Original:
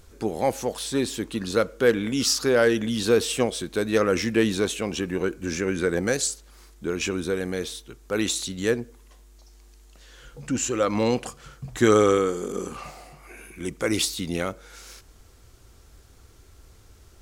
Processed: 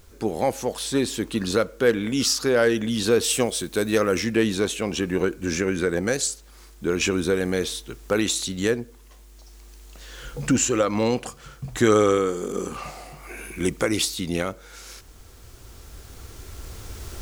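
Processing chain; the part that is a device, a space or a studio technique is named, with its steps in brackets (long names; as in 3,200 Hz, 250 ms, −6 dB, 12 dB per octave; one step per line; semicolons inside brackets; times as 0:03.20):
cheap recorder with automatic gain (white noise bed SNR 39 dB; camcorder AGC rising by 5.7 dB per second)
0:03.23–0:04.19: high-shelf EQ 5,000 Hz → 10,000 Hz +9 dB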